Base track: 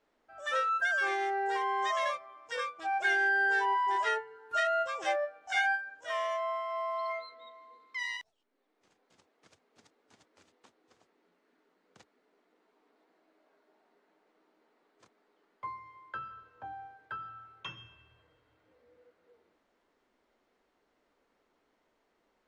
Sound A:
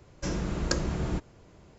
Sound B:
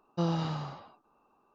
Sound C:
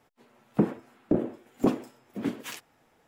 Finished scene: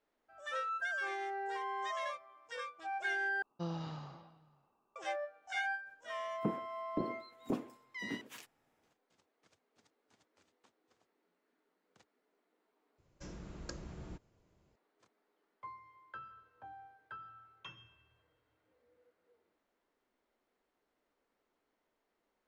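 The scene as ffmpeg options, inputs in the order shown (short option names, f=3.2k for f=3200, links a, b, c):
-filter_complex "[0:a]volume=-8dB[a];[2:a]asplit=2[b][c];[c]adelay=495.6,volume=-22dB,highshelf=f=4k:g=-11.2[d];[b][d]amix=inputs=2:normalize=0[e];[a]asplit=3[f][g][h];[f]atrim=end=3.424[i];[e]atrim=end=1.54,asetpts=PTS-STARTPTS,volume=-10.5dB[j];[g]atrim=start=4.956:end=12.984[k];[1:a]atrim=end=1.78,asetpts=PTS-STARTPTS,volume=-17.5dB[l];[h]atrim=start=14.756[m];[3:a]atrim=end=3.07,asetpts=PTS-STARTPTS,volume=-12.5dB,afade=t=in:d=0.004:c=hsin,afade=t=out:st=3.066:d=0.004:c=hsin,adelay=5860[n];[i][j]acrossfade=d=0.004:c1=hsin:c2=hsin[o];[o][k]acrossfade=d=0.004:c1=hsin:c2=hsin[p];[p][l]acrossfade=d=0.004:c1=hsin:c2=hsin[q];[q][m]acrossfade=d=0.004:c1=hsin:c2=hsin[r];[r][n]amix=inputs=2:normalize=0"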